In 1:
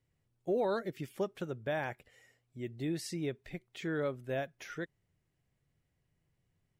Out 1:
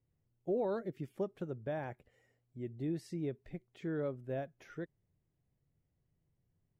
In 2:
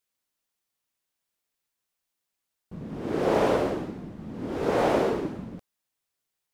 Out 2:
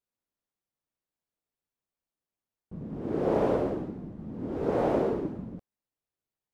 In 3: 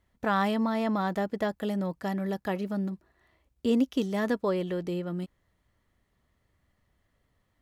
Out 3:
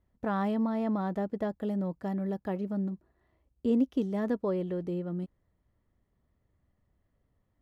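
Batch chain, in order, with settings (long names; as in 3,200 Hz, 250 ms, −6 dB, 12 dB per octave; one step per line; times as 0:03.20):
tilt shelving filter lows +7 dB, about 1,200 Hz
level −7.5 dB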